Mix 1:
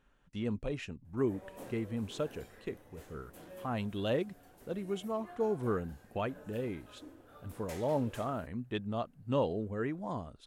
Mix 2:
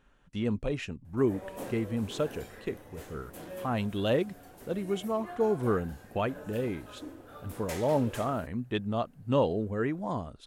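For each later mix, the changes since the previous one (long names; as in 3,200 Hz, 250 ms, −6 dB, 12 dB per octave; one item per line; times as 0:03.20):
speech +5.0 dB
background +8.0 dB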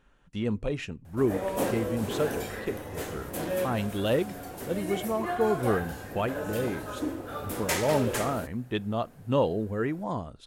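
background +11.5 dB
reverb: on, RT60 0.35 s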